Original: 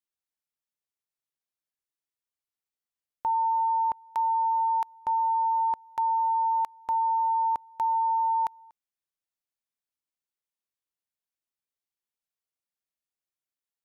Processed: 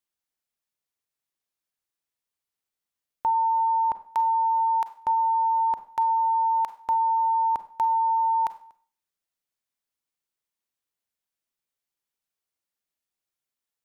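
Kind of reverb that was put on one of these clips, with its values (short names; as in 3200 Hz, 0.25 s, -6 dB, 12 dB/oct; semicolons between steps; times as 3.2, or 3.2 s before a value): Schroeder reverb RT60 0.43 s, combs from 32 ms, DRR 12 dB; gain +3.5 dB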